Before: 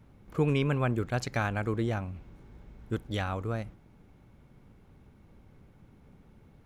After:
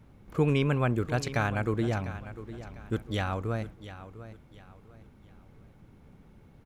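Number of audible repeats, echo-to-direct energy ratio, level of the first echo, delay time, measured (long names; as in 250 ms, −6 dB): 3, −13.5 dB, −14.0 dB, 700 ms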